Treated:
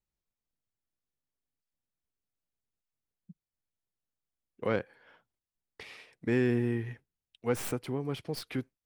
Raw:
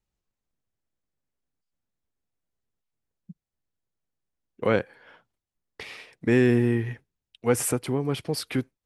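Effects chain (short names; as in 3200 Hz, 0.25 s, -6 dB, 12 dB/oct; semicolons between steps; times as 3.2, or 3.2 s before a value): tracing distortion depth 0.064 ms; dynamic EQ 8700 Hz, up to -4 dB, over -49 dBFS, Q 1.2; gain -7.5 dB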